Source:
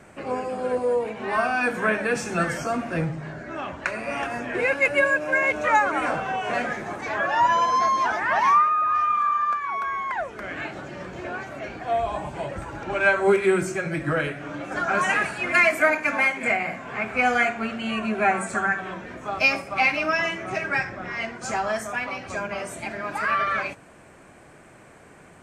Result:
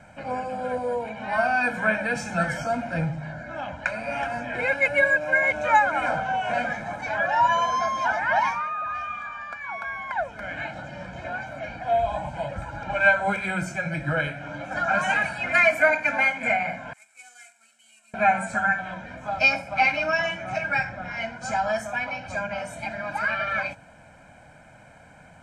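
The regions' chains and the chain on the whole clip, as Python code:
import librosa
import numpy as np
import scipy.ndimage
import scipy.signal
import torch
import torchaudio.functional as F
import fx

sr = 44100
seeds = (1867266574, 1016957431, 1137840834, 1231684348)

y = fx.chain(x, sr, fx.cvsd(bps=64000),
    fx.bandpass_q(hz=7900.0, q=5.1), at=(16.93, 18.14))
y = fx.high_shelf(y, sr, hz=7900.0, db=-9.0)
y = y + 0.91 * np.pad(y, (int(1.3 * sr / 1000.0), 0))[:len(y)]
y = F.gain(torch.from_numpy(y), -3.0).numpy()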